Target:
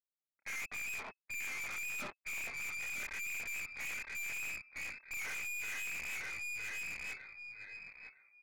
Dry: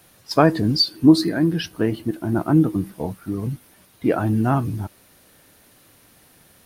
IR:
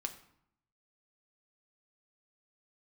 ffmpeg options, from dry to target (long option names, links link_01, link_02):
-af "afftfilt=real='re':imag='-im':win_size=2048:overlap=0.75,dynaudnorm=framelen=170:gausssize=7:maxgain=11.5dB,aresample=16000,aeval=exprs='val(0)*gte(abs(val(0)),0.0668)':channel_layout=same,aresample=44100,agate=range=-25dB:threshold=-28dB:ratio=16:detection=peak,lowpass=frequency=2800:width_type=q:width=0.5098,lowpass=frequency=2800:width_type=q:width=0.6013,lowpass=frequency=2800:width_type=q:width=0.9,lowpass=frequency=2800:width_type=q:width=2.563,afreqshift=-3300,flanger=delay=2.2:depth=2.3:regen=-26:speed=0.37:shape=triangular,areverse,acompressor=threshold=-25dB:ratio=8,areverse,aecho=1:1:758|1516|2274:0.473|0.0946|0.0189,aeval=exprs='(tanh(100*val(0)+0.45)-tanh(0.45))/100':channel_layout=same,asetrate=34839,aresample=44100"